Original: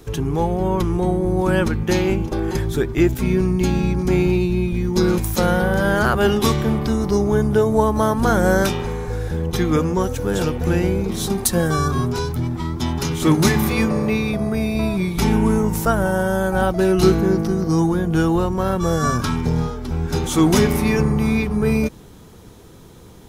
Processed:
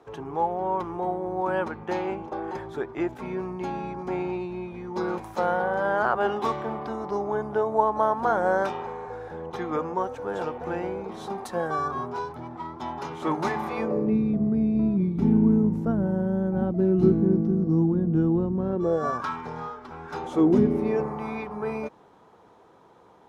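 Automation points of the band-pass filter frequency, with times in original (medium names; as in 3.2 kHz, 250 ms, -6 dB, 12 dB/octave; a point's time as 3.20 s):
band-pass filter, Q 1.7
13.75 s 840 Hz
14.15 s 230 Hz
18.62 s 230 Hz
19.27 s 1.1 kHz
20.14 s 1.1 kHz
20.62 s 250 Hz
21.14 s 870 Hz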